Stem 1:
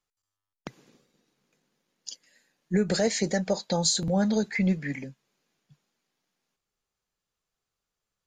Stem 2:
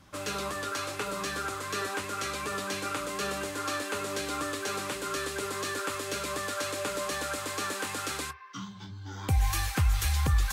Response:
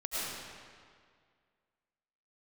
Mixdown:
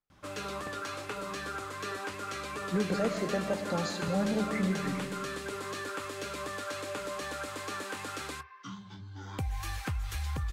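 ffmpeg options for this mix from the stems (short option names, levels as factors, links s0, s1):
-filter_complex "[0:a]lowpass=f=2500:p=1,volume=0.422,asplit=2[s0][s1];[s1]volume=0.299[s2];[1:a]acompressor=threshold=0.0398:ratio=5,adelay=100,volume=0.708[s3];[2:a]atrim=start_sample=2205[s4];[s2][s4]afir=irnorm=-1:irlink=0[s5];[s0][s3][s5]amix=inputs=3:normalize=0,highshelf=f=5300:g=-7.5"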